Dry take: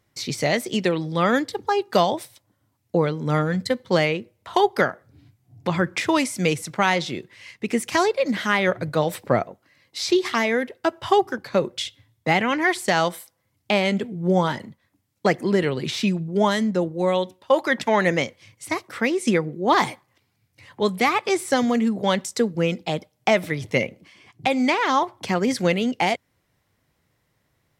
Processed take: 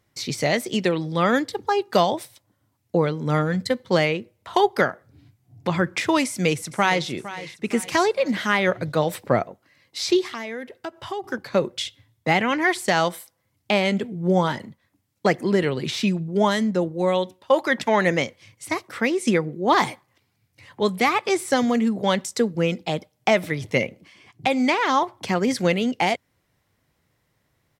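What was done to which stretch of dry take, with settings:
0:06.25–0:07.08: delay throw 460 ms, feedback 45%, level −14.5 dB
0:10.23–0:11.24: downward compressor 2 to 1, threshold −36 dBFS

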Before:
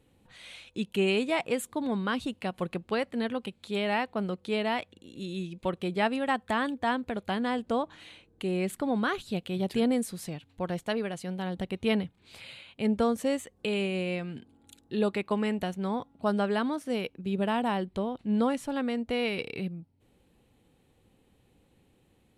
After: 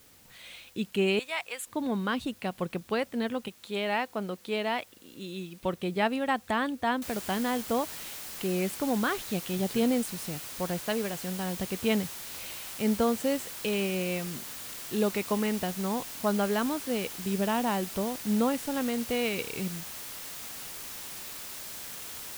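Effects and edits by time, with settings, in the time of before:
0:01.19–0:01.67: high-pass filter 1,100 Hz
0:03.48–0:05.60: low-shelf EQ 150 Hz −11 dB
0:07.02: noise floor change −58 dB −41 dB

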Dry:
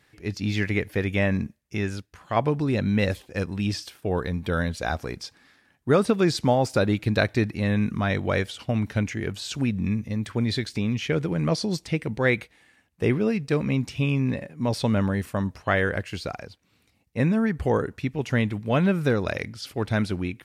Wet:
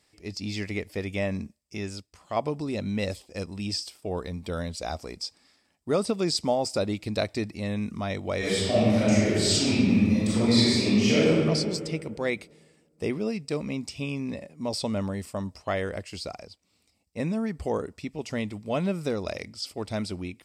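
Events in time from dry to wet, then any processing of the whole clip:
0:08.38–0:11.28: thrown reverb, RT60 2 s, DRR −11.5 dB
whole clip: thirty-one-band graphic EQ 125 Hz −11 dB, 630 Hz +4 dB, 1,600 Hz −10 dB, 5,000 Hz +11 dB, 8,000 Hz +12 dB; level −5.5 dB

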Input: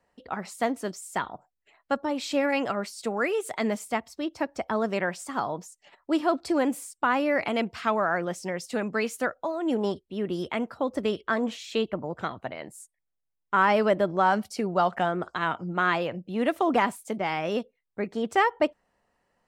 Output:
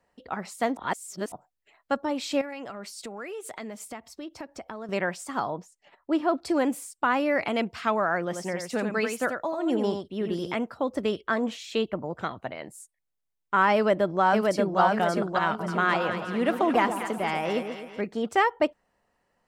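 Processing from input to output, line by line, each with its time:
0:00.77–0:01.32: reverse
0:02.41–0:04.89: downward compressor 5 to 1, threshold −35 dBFS
0:05.50–0:06.42: high-shelf EQ 4,000 Hz −12 dB
0:08.24–0:10.60: single-tap delay 88 ms −6 dB
0:13.75–0:14.80: delay throw 580 ms, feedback 45%, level −2 dB
0:15.46–0:18.01: echo with a time of its own for lows and highs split 1,100 Hz, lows 131 ms, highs 219 ms, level −8 dB

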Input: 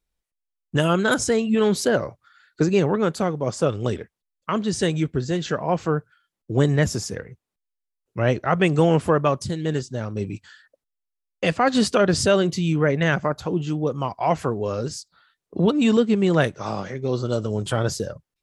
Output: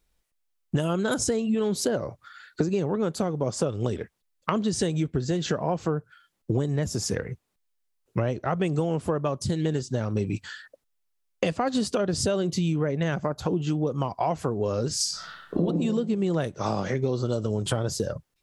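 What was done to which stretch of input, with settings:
0:14.96–0:15.64: thrown reverb, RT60 1 s, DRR −9 dB
whole clip: dynamic equaliser 1,900 Hz, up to −7 dB, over −37 dBFS, Q 0.79; downward compressor 12 to 1, threshold −30 dBFS; level +8 dB

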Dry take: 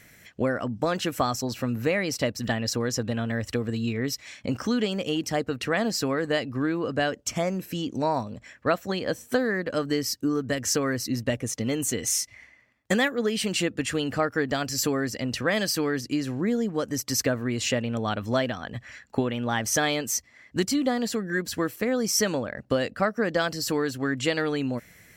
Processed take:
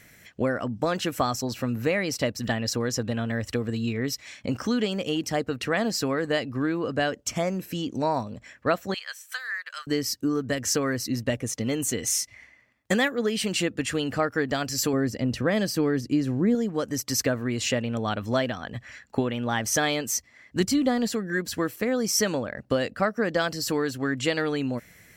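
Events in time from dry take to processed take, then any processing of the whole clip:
0:08.94–0:09.87: high-pass filter 1,300 Hz 24 dB per octave
0:14.93–0:16.55: tilt shelving filter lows +5 dB, about 680 Hz
0:20.60–0:21.08: low-shelf EQ 130 Hz +11 dB

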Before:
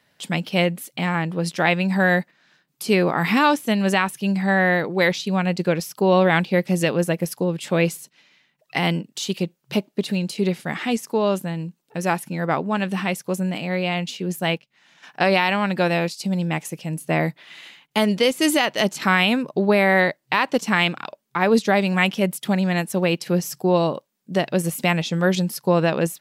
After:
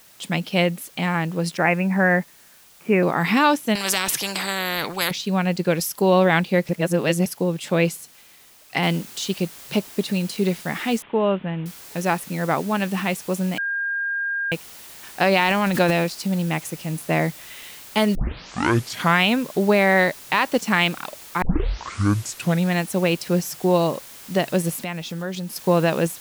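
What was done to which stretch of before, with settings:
0:01.57–0:03.03: Butterworth low-pass 2,600 Hz 72 dB per octave
0:03.75–0:05.11: every bin compressed towards the loudest bin 4 to 1
0:05.70–0:06.10: high-shelf EQ 6,000 Hz +11 dB
0:06.69–0:07.26: reverse
0:08.83: noise floor change −51 dB −42 dB
0:11.02–0:11.66: Butterworth low-pass 3,400 Hz 72 dB per octave
0:13.58–0:14.52: beep over 1,610 Hz −22 dBFS
0:15.39–0:16.04: transient designer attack +3 dB, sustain +10 dB
0:18.15: tape start 1.05 s
0:21.42: tape start 1.27 s
0:24.78–0:25.56: downward compressor 2 to 1, threshold −32 dBFS

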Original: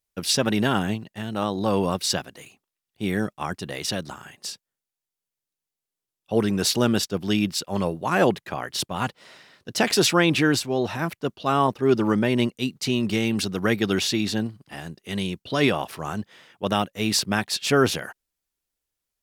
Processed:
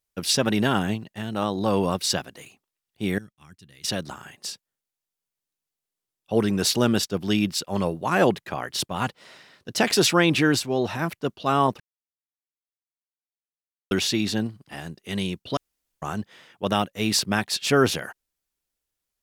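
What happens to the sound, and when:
0:03.18–0:03.84: guitar amp tone stack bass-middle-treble 6-0-2
0:11.80–0:13.91: silence
0:15.57–0:16.02: fill with room tone

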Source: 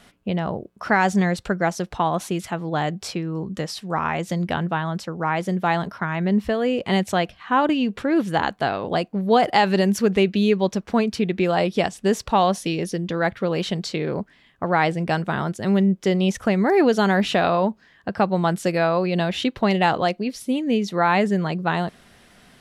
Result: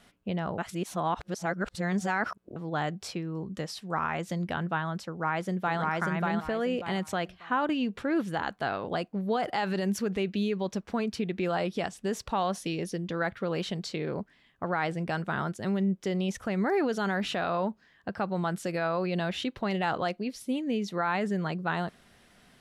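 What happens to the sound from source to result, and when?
0:00.58–0:02.56: reverse
0:05.08–0:05.81: delay throw 590 ms, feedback 25%, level −0.5 dB
whole clip: brickwall limiter −12.5 dBFS; dynamic equaliser 1,400 Hz, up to +5 dB, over −38 dBFS, Q 2.5; level −7.5 dB

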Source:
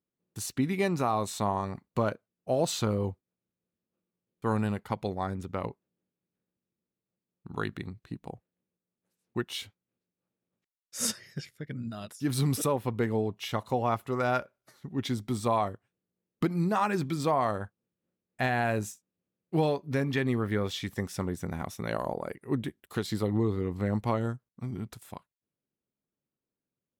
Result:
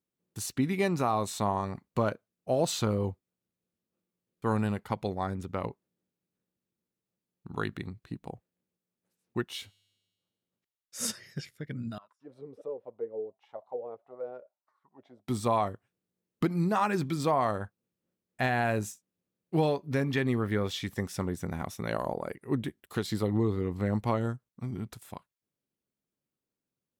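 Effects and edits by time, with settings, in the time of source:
0:09.46–0:11.14: tuned comb filter 100 Hz, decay 1.5 s, mix 30%
0:11.98–0:15.28: envelope filter 460–1,200 Hz, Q 9.1, down, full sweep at −23.5 dBFS

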